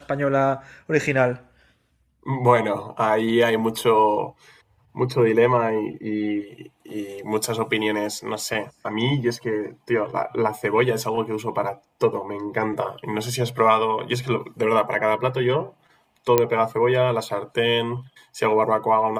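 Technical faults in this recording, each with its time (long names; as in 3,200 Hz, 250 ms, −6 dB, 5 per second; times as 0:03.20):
0:16.38: click −3 dBFS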